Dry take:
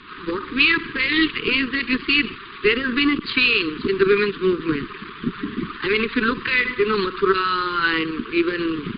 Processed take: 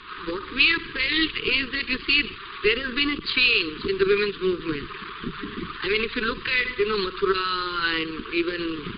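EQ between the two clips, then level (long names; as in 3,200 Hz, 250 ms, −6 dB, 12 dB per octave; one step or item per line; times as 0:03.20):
mains-hum notches 50/100/150 Hz
dynamic equaliser 1,100 Hz, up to −7 dB, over −34 dBFS, Q 0.7
octave-band graphic EQ 125/250/2,000 Hz −4/−11/−3 dB
+2.5 dB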